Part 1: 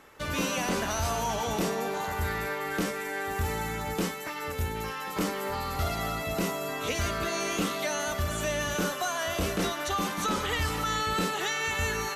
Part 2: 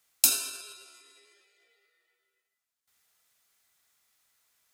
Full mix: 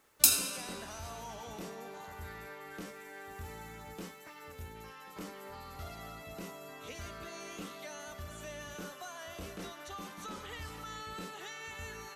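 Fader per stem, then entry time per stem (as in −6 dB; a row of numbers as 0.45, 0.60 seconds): −15.0, −1.0 decibels; 0.00, 0.00 seconds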